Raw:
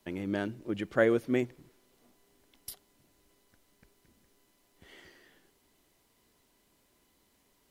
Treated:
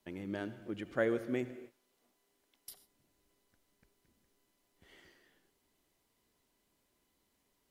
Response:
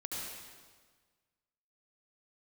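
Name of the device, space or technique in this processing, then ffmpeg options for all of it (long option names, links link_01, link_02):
keyed gated reverb: -filter_complex "[0:a]asettb=1/sr,asplit=3[link_01][link_02][link_03];[link_01]atrim=end=1.524[link_04];[link_02]atrim=start=1.52:end=2.71,asetpts=PTS-STARTPTS,afade=type=in:duration=0.004:curve=qsin,afade=type=out:start_time=1.186:duration=0.004:curve=qsin,lowshelf=frequency=220:gain=-11.5[link_05];[link_03]atrim=start=2.706[link_06];[link_04][link_05]acrossfade=duration=0.004:curve1=hsin:curve2=qsin[link_07];[link_07][link_06]acrossfade=duration=0.004:curve1=qsin:curve2=hsin,asplit=3[link_08][link_09][link_10];[1:a]atrim=start_sample=2205[link_11];[link_09][link_11]afir=irnorm=-1:irlink=0[link_12];[link_10]apad=whole_len=339571[link_13];[link_12][link_13]sidechaingate=range=-33dB:threshold=-57dB:ratio=16:detection=peak,volume=-12dB[link_14];[link_08][link_14]amix=inputs=2:normalize=0,volume=-8dB"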